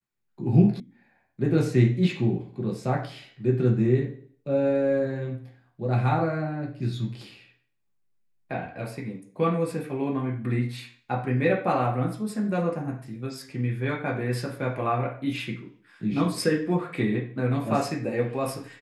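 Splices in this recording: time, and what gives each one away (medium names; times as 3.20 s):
0.80 s: sound stops dead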